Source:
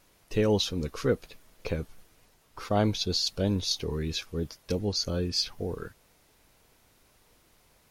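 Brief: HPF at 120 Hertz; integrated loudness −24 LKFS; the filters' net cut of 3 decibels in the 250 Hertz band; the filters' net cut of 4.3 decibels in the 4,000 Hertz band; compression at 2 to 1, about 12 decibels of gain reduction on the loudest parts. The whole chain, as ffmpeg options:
ffmpeg -i in.wav -af "highpass=120,equalizer=frequency=250:width_type=o:gain=-3.5,equalizer=frequency=4000:width_type=o:gain=-5,acompressor=threshold=-44dB:ratio=2,volume=17.5dB" out.wav

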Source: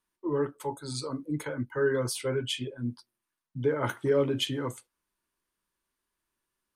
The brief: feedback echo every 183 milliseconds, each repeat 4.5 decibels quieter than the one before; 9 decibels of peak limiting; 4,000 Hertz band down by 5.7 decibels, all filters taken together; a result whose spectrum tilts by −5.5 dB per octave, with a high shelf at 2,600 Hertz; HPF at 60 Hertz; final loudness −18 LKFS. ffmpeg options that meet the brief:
ffmpeg -i in.wav -af "highpass=60,highshelf=frequency=2600:gain=-3.5,equalizer=frequency=4000:width_type=o:gain=-5,alimiter=limit=-24dB:level=0:latency=1,aecho=1:1:183|366|549|732|915|1098|1281|1464|1647:0.596|0.357|0.214|0.129|0.0772|0.0463|0.0278|0.0167|0.01,volume=15dB" out.wav

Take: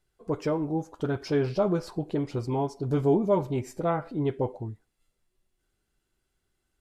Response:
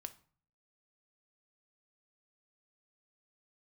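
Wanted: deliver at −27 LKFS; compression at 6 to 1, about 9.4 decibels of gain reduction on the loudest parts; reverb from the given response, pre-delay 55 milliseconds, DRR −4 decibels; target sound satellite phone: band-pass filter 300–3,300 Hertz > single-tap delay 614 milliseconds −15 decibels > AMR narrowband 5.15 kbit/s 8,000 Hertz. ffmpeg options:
-filter_complex "[0:a]acompressor=threshold=-28dB:ratio=6,asplit=2[link_01][link_02];[1:a]atrim=start_sample=2205,adelay=55[link_03];[link_02][link_03]afir=irnorm=-1:irlink=0,volume=8.5dB[link_04];[link_01][link_04]amix=inputs=2:normalize=0,highpass=300,lowpass=3300,aecho=1:1:614:0.178,volume=5dB" -ar 8000 -c:a libopencore_amrnb -b:a 5150

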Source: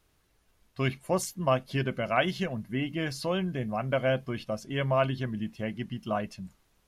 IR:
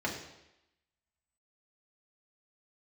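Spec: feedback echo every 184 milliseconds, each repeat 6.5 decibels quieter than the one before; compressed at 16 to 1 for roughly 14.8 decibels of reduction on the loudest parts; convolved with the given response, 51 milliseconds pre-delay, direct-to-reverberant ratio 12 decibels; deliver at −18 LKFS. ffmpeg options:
-filter_complex "[0:a]acompressor=threshold=-35dB:ratio=16,aecho=1:1:184|368|552|736|920|1104:0.473|0.222|0.105|0.0491|0.0231|0.0109,asplit=2[link_01][link_02];[1:a]atrim=start_sample=2205,adelay=51[link_03];[link_02][link_03]afir=irnorm=-1:irlink=0,volume=-18.5dB[link_04];[link_01][link_04]amix=inputs=2:normalize=0,volume=21dB"

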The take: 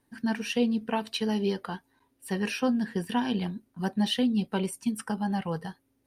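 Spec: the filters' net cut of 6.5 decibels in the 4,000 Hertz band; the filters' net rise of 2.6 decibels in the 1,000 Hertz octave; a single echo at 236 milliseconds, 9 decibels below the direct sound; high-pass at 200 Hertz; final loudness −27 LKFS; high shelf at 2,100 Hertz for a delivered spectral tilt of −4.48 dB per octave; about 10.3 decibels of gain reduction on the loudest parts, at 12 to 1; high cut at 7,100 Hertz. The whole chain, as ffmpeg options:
ffmpeg -i in.wav -af "highpass=200,lowpass=7100,equalizer=frequency=1000:width_type=o:gain=4.5,highshelf=frequency=2100:gain=-6.5,equalizer=frequency=4000:width_type=o:gain=-3,acompressor=threshold=-32dB:ratio=12,aecho=1:1:236:0.355,volume=11dB" out.wav

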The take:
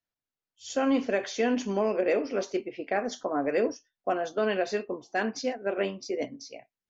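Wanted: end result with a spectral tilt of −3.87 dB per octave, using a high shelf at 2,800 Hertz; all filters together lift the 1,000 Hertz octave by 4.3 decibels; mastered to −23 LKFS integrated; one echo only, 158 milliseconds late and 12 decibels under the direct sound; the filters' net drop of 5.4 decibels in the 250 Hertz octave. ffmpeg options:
ffmpeg -i in.wav -af "equalizer=frequency=250:width_type=o:gain=-7,equalizer=frequency=1000:width_type=o:gain=7.5,highshelf=frequency=2800:gain=-3,aecho=1:1:158:0.251,volume=6dB" out.wav

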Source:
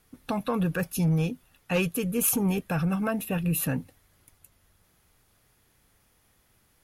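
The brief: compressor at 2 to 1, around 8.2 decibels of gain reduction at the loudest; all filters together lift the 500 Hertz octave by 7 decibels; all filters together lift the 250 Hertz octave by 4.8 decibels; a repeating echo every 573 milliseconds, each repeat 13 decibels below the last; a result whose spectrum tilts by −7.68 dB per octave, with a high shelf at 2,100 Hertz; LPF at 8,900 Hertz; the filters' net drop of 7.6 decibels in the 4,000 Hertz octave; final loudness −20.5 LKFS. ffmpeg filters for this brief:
ffmpeg -i in.wav -af "lowpass=8900,equalizer=frequency=250:width_type=o:gain=6,equalizer=frequency=500:width_type=o:gain=7,highshelf=frequency=2100:gain=-7,equalizer=frequency=4000:width_type=o:gain=-4,acompressor=threshold=-31dB:ratio=2,aecho=1:1:573|1146|1719:0.224|0.0493|0.0108,volume=10dB" out.wav

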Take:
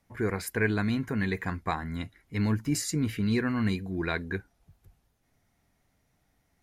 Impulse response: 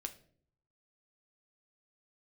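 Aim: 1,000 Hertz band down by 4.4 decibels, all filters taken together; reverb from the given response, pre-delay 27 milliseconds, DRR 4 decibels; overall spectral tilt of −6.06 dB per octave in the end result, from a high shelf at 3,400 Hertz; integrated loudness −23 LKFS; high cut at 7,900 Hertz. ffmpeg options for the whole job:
-filter_complex "[0:a]lowpass=7900,equalizer=frequency=1000:width_type=o:gain=-5.5,highshelf=frequency=3400:gain=-4.5,asplit=2[link_01][link_02];[1:a]atrim=start_sample=2205,adelay=27[link_03];[link_02][link_03]afir=irnorm=-1:irlink=0,volume=-2dB[link_04];[link_01][link_04]amix=inputs=2:normalize=0,volume=6dB"

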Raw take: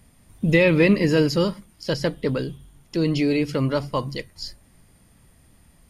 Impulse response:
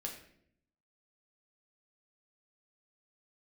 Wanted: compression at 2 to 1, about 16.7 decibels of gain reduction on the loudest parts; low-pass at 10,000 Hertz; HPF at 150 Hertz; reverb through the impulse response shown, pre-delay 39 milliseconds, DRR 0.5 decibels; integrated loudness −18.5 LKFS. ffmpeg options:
-filter_complex "[0:a]highpass=150,lowpass=10000,acompressor=threshold=-45dB:ratio=2,asplit=2[link_01][link_02];[1:a]atrim=start_sample=2205,adelay=39[link_03];[link_02][link_03]afir=irnorm=-1:irlink=0,volume=0.5dB[link_04];[link_01][link_04]amix=inputs=2:normalize=0,volume=15.5dB"

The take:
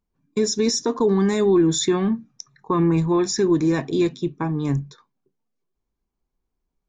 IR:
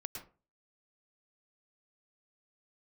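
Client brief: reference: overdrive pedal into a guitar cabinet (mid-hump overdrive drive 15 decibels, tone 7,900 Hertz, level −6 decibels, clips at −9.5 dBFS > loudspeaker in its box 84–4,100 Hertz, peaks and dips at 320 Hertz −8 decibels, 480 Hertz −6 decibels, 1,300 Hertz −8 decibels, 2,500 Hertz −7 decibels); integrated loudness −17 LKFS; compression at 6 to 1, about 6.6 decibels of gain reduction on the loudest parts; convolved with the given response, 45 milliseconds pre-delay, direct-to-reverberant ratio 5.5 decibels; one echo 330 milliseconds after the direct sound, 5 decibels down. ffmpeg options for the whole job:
-filter_complex "[0:a]acompressor=threshold=-21dB:ratio=6,aecho=1:1:330:0.562,asplit=2[link_01][link_02];[1:a]atrim=start_sample=2205,adelay=45[link_03];[link_02][link_03]afir=irnorm=-1:irlink=0,volume=-3.5dB[link_04];[link_01][link_04]amix=inputs=2:normalize=0,asplit=2[link_05][link_06];[link_06]highpass=frequency=720:poles=1,volume=15dB,asoftclip=type=tanh:threshold=-9.5dB[link_07];[link_05][link_07]amix=inputs=2:normalize=0,lowpass=frequency=7900:poles=1,volume=-6dB,highpass=84,equalizer=frequency=320:width_type=q:width=4:gain=-8,equalizer=frequency=480:width_type=q:width=4:gain=-6,equalizer=frequency=1300:width_type=q:width=4:gain=-8,equalizer=frequency=2500:width_type=q:width=4:gain=-7,lowpass=frequency=4100:width=0.5412,lowpass=frequency=4100:width=1.3066,volume=8.5dB"

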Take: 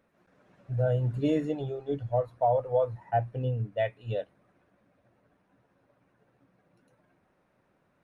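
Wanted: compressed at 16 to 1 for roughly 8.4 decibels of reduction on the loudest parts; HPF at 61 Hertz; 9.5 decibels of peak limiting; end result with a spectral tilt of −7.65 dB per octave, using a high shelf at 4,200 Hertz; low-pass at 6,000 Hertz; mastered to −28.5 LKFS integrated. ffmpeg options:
ffmpeg -i in.wav -af "highpass=61,lowpass=6000,highshelf=frequency=4200:gain=-7.5,acompressor=threshold=-29dB:ratio=16,volume=11.5dB,alimiter=limit=-19.5dB:level=0:latency=1" out.wav

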